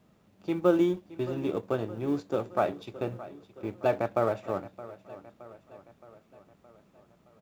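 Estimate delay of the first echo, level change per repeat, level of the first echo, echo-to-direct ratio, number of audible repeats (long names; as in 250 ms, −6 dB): 619 ms, −5.0 dB, −17.0 dB, −15.5 dB, 4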